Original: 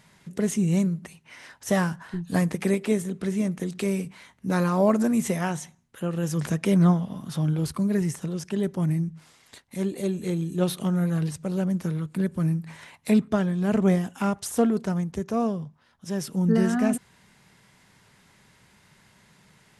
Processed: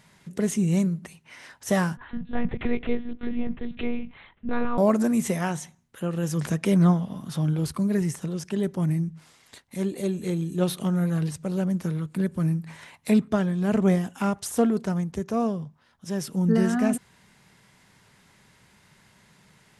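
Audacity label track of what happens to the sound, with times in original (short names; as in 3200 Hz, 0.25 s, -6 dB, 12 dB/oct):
1.970000	4.780000	monotone LPC vocoder at 8 kHz 240 Hz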